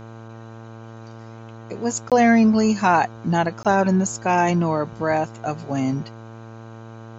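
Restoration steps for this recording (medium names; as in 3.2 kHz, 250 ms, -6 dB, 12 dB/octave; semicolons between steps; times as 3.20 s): de-hum 113 Hz, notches 14; interpolate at 2.10/3.63 s, 17 ms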